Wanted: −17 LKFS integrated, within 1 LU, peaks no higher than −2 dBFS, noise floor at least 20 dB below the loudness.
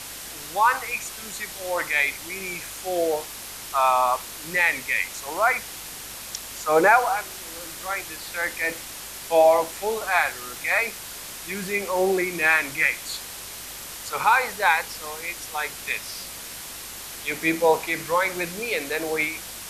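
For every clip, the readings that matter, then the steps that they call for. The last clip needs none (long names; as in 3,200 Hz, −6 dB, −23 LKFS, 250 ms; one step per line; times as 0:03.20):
mains hum 50 Hz; hum harmonics up to 250 Hz; level of the hum −54 dBFS; background noise floor −38 dBFS; target noise floor −44 dBFS; integrated loudness −24.0 LKFS; sample peak −4.5 dBFS; target loudness −17.0 LKFS
→ hum removal 50 Hz, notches 5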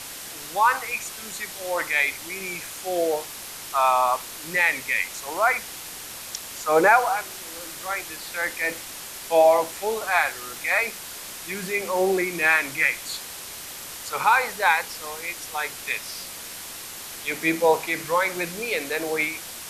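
mains hum none found; background noise floor −38 dBFS; target noise floor −44 dBFS
→ broadband denoise 6 dB, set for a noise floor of −38 dBFS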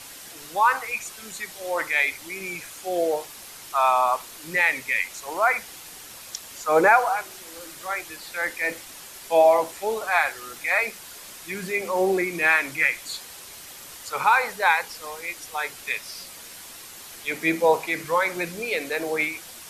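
background noise floor −42 dBFS; target noise floor −44 dBFS
→ broadband denoise 6 dB, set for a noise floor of −42 dBFS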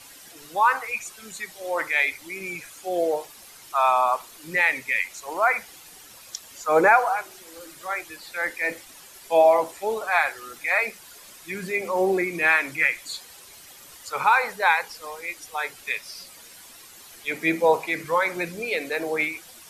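background noise floor −47 dBFS; integrated loudness −23.5 LKFS; sample peak −4.5 dBFS; target loudness −17.0 LKFS
→ level +6.5 dB
brickwall limiter −2 dBFS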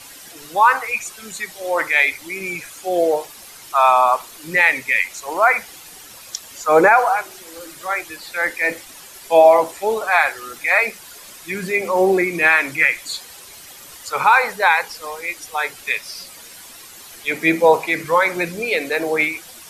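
integrated loudness −17.5 LKFS; sample peak −2.0 dBFS; background noise floor −41 dBFS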